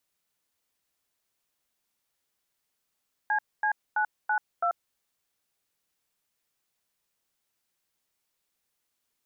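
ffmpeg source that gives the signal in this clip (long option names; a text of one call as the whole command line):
ffmpeg -f lavfi -i "aevalsrc='0.0531*clip(min(mod(t,0.331),0.087-mod(t,0.331))/0.002,0,1)*(eq(floor(t/0.331),0)*(sin(2*PI*852*mod(t,0.331))+sin(2*PI*1633*mod(t,0.331)))+eq(floor(t/0.331),1)*(sin(2*PI*852*mod(t,0.331))+sin(2*PI*1633*mod(t,0.331)))+eq(floor(t/0.331),2)*(sin(2*PI*852*mod(t,0.331))+sin(2*PI*1477*mod(t,0.331)))+eq(floor(t/0.331),3)*(sin(2*PI*852*mod(t,0.331))+sin(2*PI*1477*mod(t,0.331)))+eq(floor(t/0.331),4)*(sin(2*PI*697*mod(t,0.331))+sin(2*PI*1336*mod(t,0.331))))':duration=1.655:sample_rate=44100" out.wav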